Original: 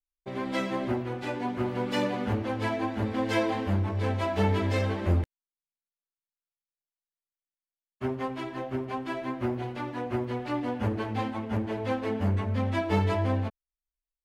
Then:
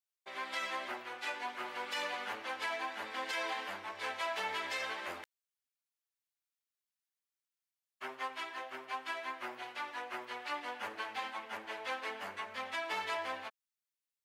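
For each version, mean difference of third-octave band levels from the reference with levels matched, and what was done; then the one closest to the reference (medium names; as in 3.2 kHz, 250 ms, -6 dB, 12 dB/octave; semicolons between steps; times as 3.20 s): 12.0 dB: high-pass 1.2 kHz 12 dB/octave; peak limiter -29 dBFS, peak gain reduction 8 dB; trim +1.5 dB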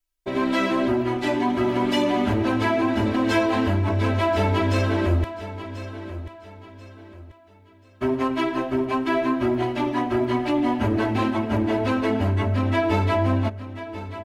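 3.0 dB: comb 3.1 ms, depth 86%; in parallel at +0.5 dB: compressor with a negative ratio -29 dBFS; on the sum: feedback delay 1037 ms, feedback 34%, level -13 dB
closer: second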